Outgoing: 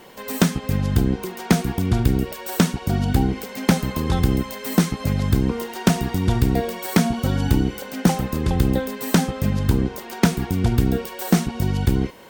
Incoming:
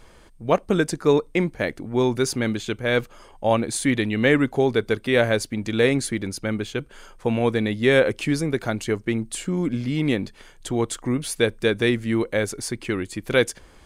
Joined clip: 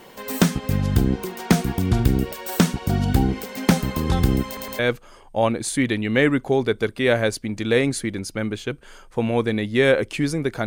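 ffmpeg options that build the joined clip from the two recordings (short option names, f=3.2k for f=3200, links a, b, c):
-filter_complex "[0:a]apad=whole_dur=10.66,atrim=end=10.66,asplit=3[a][b][c];[a]atrim=end=4.572[d];[b]atrim=start=4.458:end=4.572[e];[c]atrim=start=4.458:end=4.572[f];[1:a]atrim=start=2.868:end=8.74[g];[d][e]acrossfade=d=0.004:c1=hsin:c2=hsin[h];[h][f]acrossfade=d=0.004:c1=hsin:c2=hsin[i];[i][g]acrossfade=d=0.004:c1=hsin:c2=hsin"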